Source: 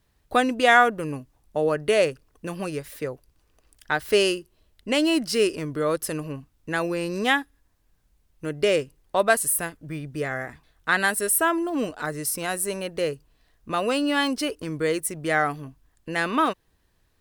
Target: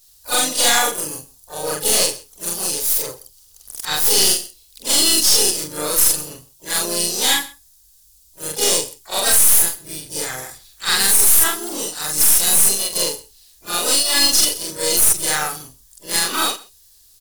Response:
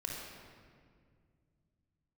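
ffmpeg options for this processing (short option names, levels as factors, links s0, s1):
-filter_complex "[0:a]afftfilt=real='re':imag='-im':win_size=4096:overlap=0.75,equalizer=f=200:t=o:w=2.9:g=-7,aecho=1:1:2.4:0.38,acontrast=65,aexciter=amount=12.9:drive=5.6:freq=3600,aeval=exprs='(tanh(1.78*val(0)+0.45)-tanh(0.45))/1.78':c=same,aecho=1:1:128:0.0841,asplit=4[s0][s1][s2][s3];[s1]asetrate=29433,aresample=44100,atempo=1.49831,volume=0.224[s4];[s2]asetrate=52444,aresample=44100,atempo=0.840896,volume=0.501[s5];[s3]asetrate=88200,aresample=44100,atempo=0.5,volume=0.282[s6];[s0][s4][s5][s6]amix=inputs=4:normalize=0,alimiter=level_in=1.19:limit=0.891:release=50:level=0:latency=1,volume=0.75"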